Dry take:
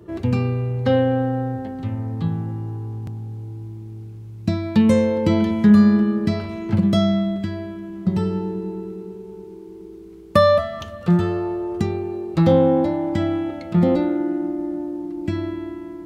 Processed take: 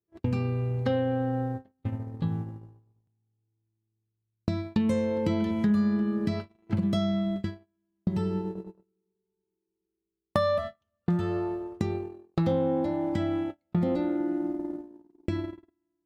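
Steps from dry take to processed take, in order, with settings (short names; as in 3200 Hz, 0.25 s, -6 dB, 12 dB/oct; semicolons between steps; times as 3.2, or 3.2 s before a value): gate -24 dBFS, range -46 dB; compressor 2.5:1, threshold -28 dBFS, peak gain reduction 13 dB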